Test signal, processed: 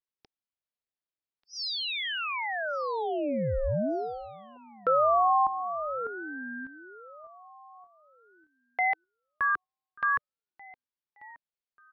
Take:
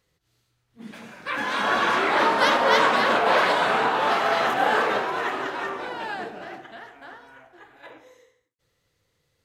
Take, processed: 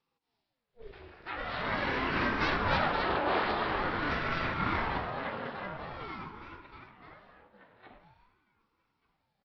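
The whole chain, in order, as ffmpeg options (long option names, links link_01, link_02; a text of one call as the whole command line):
ffmpeg -i in.wav -af "lowshelf=frequency=410:gain=7.5,aecho=1:1:1187|2374:0.0708|0.0212,aresample=11025,aresample=44100,highpass=frequency=170:width=0.5412,highpass=frequency=170:width=1.3066,aeval=exprs='val(0)*sin(2*PI*410*n/s+410*0.65/0.46*sin(2*PI*0.46*n/s))':channel_layout=same,volume=-8.5dB" out.wav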